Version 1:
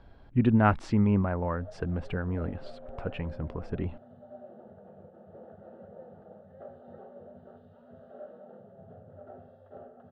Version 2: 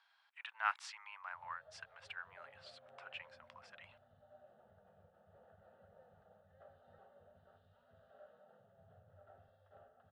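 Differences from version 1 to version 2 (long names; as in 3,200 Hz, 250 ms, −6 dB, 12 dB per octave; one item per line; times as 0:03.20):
speech: add Butterworth high-pass 850 Hz 36 dB per octave
master: add guitar amp tone stack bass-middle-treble 10-0-10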